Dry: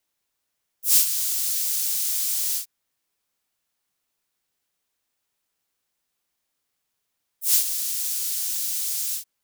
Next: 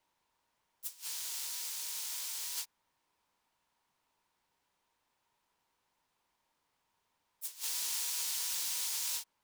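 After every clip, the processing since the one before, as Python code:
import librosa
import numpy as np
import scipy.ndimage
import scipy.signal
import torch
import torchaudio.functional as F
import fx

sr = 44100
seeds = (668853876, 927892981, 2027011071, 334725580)

y = fx.lowpass(x, sr, hz=2800.0, slope=6)
y = fx.peak_eq(y, sr, hz=940.0, db=12.5, octaves=0.29)
y = fx.over_compress(y, sr, threshold_db=-38.0, ratio=-0.5)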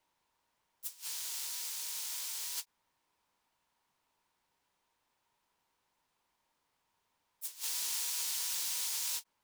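y = fx.end_taper(x, sr, db_per_s=590.0)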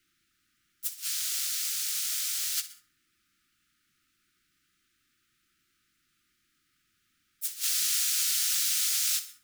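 y = fx.brickwall_bandstop(x, sr, low_hz=380.0, high_hz=1200.0)
y = fx.echo_feedback(y, sr, ms=63, feedback_pct=37, wet_db=-14.5)
y = fx.rev_plate(y, sr, seeds[0], rt60_s=0.56, hf_ratio=0.4, predelay_ms=115, drr_db=18.5)
y = F.gain(torch.from_numpy(y), 8.5).numpy()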